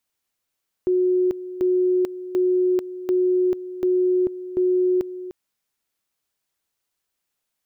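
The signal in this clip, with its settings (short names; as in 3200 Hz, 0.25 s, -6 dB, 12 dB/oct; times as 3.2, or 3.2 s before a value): two-level tone 365 Hz -16 dBFS, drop 14 dB, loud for 0.44 s, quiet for 0.30 s, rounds 6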